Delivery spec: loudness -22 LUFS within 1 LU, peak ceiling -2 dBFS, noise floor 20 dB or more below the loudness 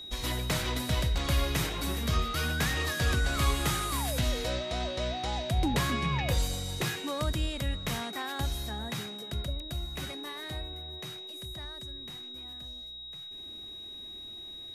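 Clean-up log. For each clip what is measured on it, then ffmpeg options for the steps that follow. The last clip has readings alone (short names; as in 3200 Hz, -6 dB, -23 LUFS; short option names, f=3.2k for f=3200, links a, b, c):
steady tone 3800 Hz; tone level -41 dBFS; loudness -32.5 LUFS; peak -17.0 dBFS; loudness target -22.0 LUFS
-> -af "bandreject=f=3.8k:w=30"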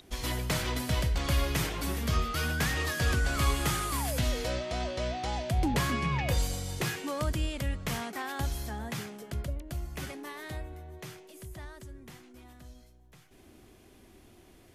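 steady tone none; loudness -32.0 LUFS; peak -17.0 dBFS; loudness target -22.0 LUFS
-> -af "volume=10dB"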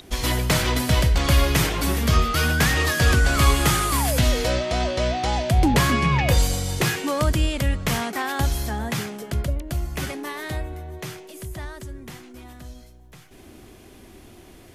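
loudness -22.0 LUFS; peak -7.0 dBFS; noise floor -47 dBFS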